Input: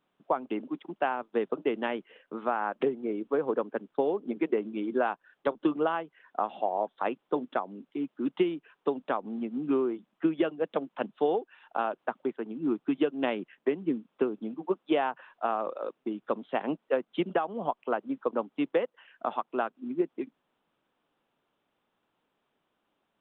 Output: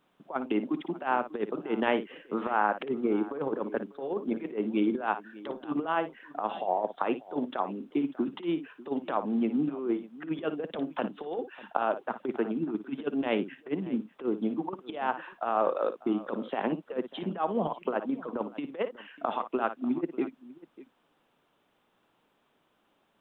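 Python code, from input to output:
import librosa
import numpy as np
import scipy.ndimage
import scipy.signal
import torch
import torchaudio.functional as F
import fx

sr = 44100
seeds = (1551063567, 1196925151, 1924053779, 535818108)

y = fx.over_compress(x, sr, threshold_db=-31.0, ratio=-0.5)
y = fx.echo_multitap(y, sr, ms=(57, 594), db=(-12.0, -19.0))
y = y * librosa.db_to_amplitude(3.0)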